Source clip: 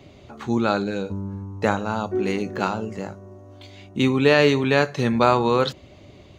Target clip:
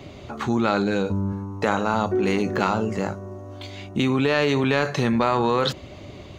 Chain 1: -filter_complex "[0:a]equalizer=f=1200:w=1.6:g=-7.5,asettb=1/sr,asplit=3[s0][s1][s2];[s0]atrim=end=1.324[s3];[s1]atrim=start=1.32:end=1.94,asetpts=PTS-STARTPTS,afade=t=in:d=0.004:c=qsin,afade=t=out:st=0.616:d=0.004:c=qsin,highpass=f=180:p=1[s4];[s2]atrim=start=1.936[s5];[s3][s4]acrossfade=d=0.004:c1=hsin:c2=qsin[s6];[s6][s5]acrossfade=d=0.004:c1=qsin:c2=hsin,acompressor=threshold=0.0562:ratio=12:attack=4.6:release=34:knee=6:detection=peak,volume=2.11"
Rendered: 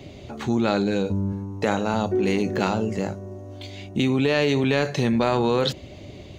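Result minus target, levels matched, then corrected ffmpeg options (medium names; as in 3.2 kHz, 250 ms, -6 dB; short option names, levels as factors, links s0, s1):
1 kHz band -3.0 dB
-filter_complex "[0:a]equalizer=f=1200:w=1.6:g=2.5,asettb=1/sr,asplit=3[s0][s1][s2];[s0]atrim=end=1.324[s3];[s1]atrim=start=1.32:end=1.94,asetpts=PTS-STARTPTS,afade=t=in:d=0.004:c=qsin,afade=t=out:st=0.616:d=0.004:c=qsin,highpass=f=180:p=1[s4];[s2]atrim=start=1.936[s5];[s3][s4]acrossfade=d=0.004:c1=hsin:c2=qsin[s6];[s6][s5]acrossfade=d=0.004:c1=qsin:c2=hsin,acompressor=threshold=0.0562:ratio=12:attack=4.6:release=34:knee=6:detection=peak,volume=2.11"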